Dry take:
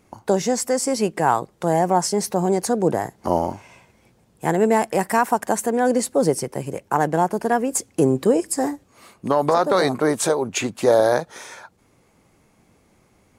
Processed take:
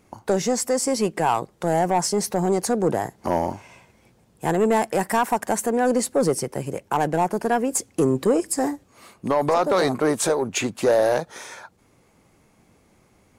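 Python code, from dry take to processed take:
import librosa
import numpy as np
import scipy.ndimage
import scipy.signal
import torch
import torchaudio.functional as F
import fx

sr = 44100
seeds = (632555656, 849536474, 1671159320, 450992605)

y = 10.0 ** (-11.0 / 20.0) * np.tanh(x / 10.0 ** (-11.0 / 20.0))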